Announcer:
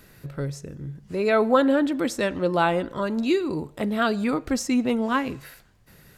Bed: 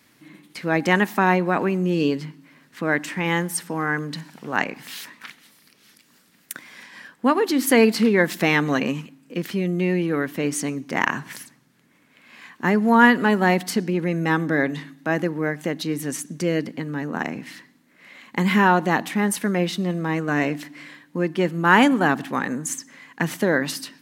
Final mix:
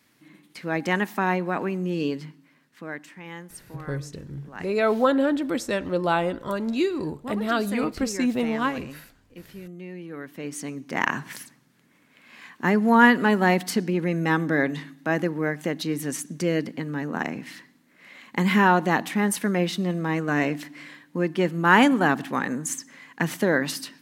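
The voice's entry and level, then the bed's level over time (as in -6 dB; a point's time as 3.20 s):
3.50 s, -1.5 dB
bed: 2.29 s -5.5 dB
3.19 s -17 dB
9.92 s -17 dB
11.12 s -1.5 dB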